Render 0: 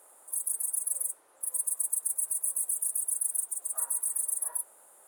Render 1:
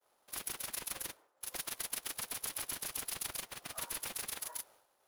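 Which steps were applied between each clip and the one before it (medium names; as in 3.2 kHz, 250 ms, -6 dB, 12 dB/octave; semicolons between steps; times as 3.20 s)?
median filter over 5 samples; expander -54 dBFS; trim -2.5 dB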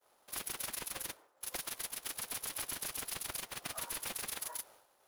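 peak limiter -31.5 dBFS, peak gain reduction 9.5 dB; trim +4 dB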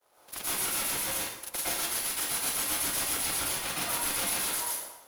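plate-style reverb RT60 0.82 s, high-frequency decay 0.85×, pre-delay 100 ms, DRR -9 dB; trim +1.5 dB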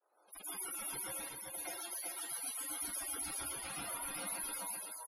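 loudest bins only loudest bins 64; delay 382 ms -4 dB; trim -8.5 dB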